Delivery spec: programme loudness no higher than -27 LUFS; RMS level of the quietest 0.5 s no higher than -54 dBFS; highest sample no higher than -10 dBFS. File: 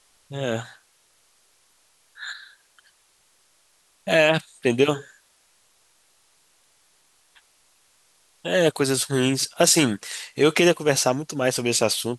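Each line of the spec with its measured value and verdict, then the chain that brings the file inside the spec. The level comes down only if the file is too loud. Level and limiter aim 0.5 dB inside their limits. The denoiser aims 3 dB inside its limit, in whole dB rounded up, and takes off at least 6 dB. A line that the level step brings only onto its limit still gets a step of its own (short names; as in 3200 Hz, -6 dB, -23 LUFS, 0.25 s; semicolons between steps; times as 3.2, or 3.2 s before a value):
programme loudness -21.5 LUFS: fail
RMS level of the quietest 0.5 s -62 dBFS: OK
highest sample -5.5 dBFS: fail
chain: gain -6 dB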